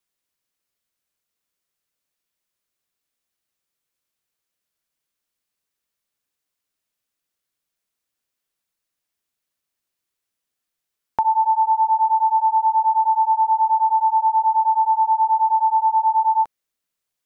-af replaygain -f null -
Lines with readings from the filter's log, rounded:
track_gain = +1.2 dB
track_peak = 0.251